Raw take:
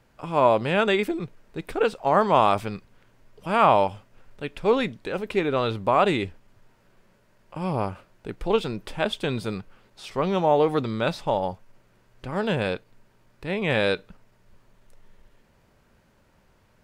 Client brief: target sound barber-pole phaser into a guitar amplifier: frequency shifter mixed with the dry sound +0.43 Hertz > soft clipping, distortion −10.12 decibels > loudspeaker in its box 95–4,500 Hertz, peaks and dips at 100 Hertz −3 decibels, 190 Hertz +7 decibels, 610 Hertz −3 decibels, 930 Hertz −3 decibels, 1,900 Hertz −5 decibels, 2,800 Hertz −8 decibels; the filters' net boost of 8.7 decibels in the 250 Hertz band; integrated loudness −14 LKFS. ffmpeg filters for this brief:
ffmpeg -i in.wav -filter_complex "[0:a]equalizer=frequency=250:width_type=o:gain=8,asplit=2[link_01][link_02];[link_02]afreqshift=0.43[link_03];[link_01][link_03]amix=inputs=2:normalize=1,asoftclip=threshold=-20.5dB,highpass=95,equalizer=frequency=100:width_type=q:width=4:gain=-3,equalizer=frequency=190:width_type=q:width=4:gain=7,equalizer=frequency=610:width_type=q:width=4:gain=-3,equalizer=frequency=930:width_type=q:width=4:gain=-3,equalizer=frequency=1900:width_type=q:width=4:gain=-5,equalizer=frequency=2800:width_type=q:width=4:gain=-8,lowpass=frequency=4500:width=0.5412,lowpass=frequency=4500:width=1.3066,volume=14.5dB" out.wav

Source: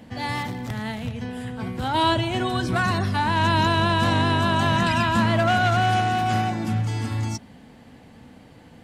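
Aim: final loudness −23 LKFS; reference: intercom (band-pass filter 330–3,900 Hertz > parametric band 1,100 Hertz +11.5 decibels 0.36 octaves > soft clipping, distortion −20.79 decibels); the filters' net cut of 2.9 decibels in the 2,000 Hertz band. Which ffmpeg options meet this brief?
ffmpeg -i in.wav -af "highpass=330,lowpass=3900,equalizer=frequency=1100:width_type=o:width=0.36:gain=11.5,equalizer=frequency=2000:width_type=o:gain=-6,asoftclip=threshold=-13dB,volume=-0.5dB" out.wav

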